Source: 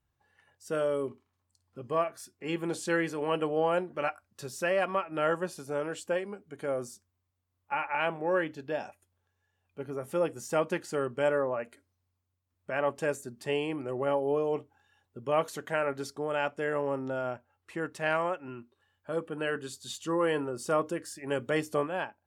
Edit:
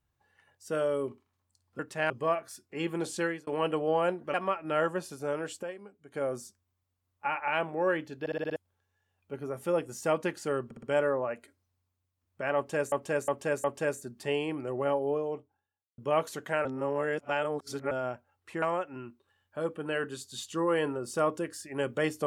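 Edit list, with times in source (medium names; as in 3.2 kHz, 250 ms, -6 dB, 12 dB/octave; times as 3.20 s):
2.87–3.16 s: fade out
4.03–4.81 s: delete
6.10–6.61 s: gain -8.5 dB
8.67 s: stutter in place 0.06 s, 6 plays
11.12 s: stutter 0.06 s, 4 plays
12.85–13.21 s: loop, 4 plays
14.02–15.19 s: studio fade out
15.86–17.12 s: reverse
17.83–18.14 s: move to 1.79 s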